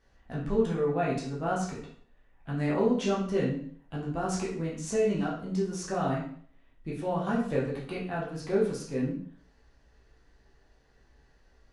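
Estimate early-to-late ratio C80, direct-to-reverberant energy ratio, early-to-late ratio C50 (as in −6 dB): 8.5 dB, −6.0 dB, 4.5 dB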